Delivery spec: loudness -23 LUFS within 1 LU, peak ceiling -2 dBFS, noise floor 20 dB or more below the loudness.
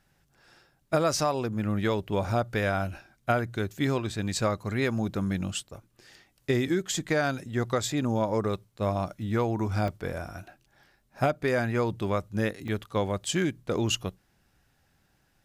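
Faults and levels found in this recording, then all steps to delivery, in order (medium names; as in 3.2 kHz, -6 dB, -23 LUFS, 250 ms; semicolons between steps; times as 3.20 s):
dropouts 2; longest dropout 2.6 ms; loudness -29.0 LUFS; peak level -11.0 dBFS; loudness target -23.0 LUFS
-> interpolate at 9.88/12.68 s, 2.6 ms; trim +6 dB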